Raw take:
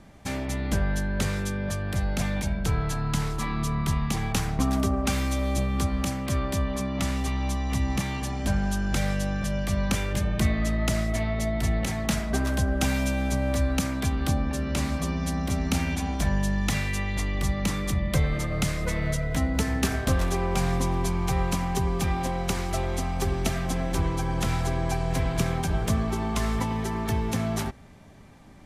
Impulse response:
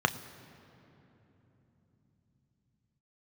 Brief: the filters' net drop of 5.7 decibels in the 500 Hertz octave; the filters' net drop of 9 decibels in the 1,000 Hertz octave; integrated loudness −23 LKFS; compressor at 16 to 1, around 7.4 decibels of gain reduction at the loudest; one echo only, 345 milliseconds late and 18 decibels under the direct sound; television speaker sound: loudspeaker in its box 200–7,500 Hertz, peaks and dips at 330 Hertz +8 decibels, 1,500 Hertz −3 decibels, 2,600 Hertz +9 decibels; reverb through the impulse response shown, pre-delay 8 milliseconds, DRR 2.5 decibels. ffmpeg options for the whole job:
-filter_complex "[0:a]equalizer=frequency=500:width_type=o:gain=-8,equalizer=frequency=1000:width_type=o:gain=-9,acompressor=threshold=-26dB:ratio=16,aecho=1:1:345:0.126,asplit=2[link_01][link_02];[1:a]atrim=start_sample=2205,adelay=8[link_03];[link_02][link_03]afir=irnorm=-1:irlink=0,volume=-14dB[link_04];[link_01][link_04]amix=inputs=2:normalize=0,highpass=frequency=200:width=0.5412,highpass=frequency=200:width=1.3066,equalizer=frequency=330:width_type=q:width=4:gain=8,equalizer=frequency=1500:width_type=q:width=4:gain=-3,equalizer=frequency=2600:width_type=q:width=4:gain=9,lowpass=frequency=7500:width=0.5412,lowpass=frequency=7500:width=1.3066,volume=11dB"

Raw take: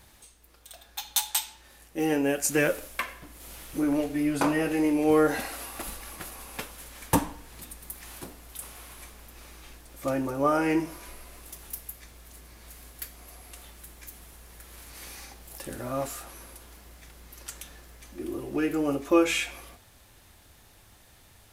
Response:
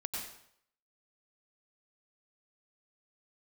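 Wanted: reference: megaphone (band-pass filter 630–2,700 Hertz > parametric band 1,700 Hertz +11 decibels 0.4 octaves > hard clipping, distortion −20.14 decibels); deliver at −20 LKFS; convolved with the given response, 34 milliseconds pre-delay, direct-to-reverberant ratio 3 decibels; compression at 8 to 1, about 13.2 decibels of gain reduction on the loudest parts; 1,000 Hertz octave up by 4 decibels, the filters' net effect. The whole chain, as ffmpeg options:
-filter_complex "[0:a]equalizer=frequency=1000:width_type=o:gain=4.5,acompressor=threshold=-29dB:ratio=8,asplit=2[link_01][link_02];[1:a]atrim=start_sample=2205,adelay=34[link_03];[link_02][link_03]afir=irnorm=-1:irlink=0,volume=-4.5dB[link_04];[link_01][link_04]amix=inputs=2:normalize=0,highpass=630,lowpass=2700,equalizer=frequency=1700:width_type=o:width=0.4:gain=11,asoftclip=type=hard:threshold=-24dB,volume=17.5dB"

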